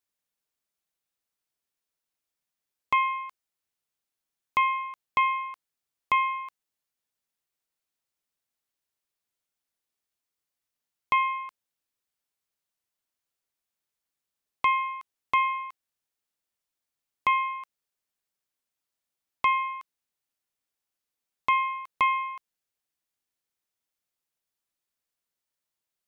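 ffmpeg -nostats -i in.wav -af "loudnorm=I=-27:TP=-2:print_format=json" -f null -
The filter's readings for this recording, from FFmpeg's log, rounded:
"input_i" : "-27.2",
"input_tp" : "-13.5",
"input_lra" : "3.8",
"input_thresh" : "-37.9",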